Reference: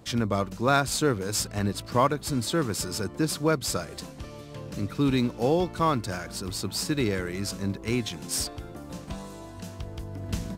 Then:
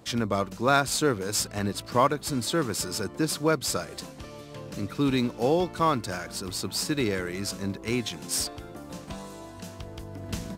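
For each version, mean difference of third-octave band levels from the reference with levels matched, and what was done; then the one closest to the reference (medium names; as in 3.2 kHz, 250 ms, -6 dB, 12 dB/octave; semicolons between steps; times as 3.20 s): 1.5 dB: bass shelf 150 Hz -7 dB; trim +1 dB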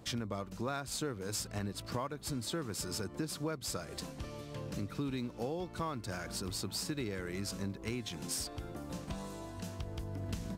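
4.5 dB: compression 5:1, threshold -32 dBFS, peak gain reduction 14.5 dB; trim -3 dB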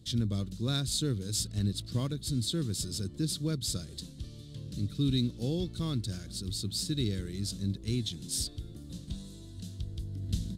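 6.5 dB: FFT filter 120 Hz 0 dB, 340 Hz -8 dB, 900 Hz -27 dB, 1.7 kHz -17 dB, 2.5 kHz -16 dB, 3.7 kHz +2 dB, 5.6 kHz -6 dB, 9.7 kHz -3 dB, 15 kHz -11 dB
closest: first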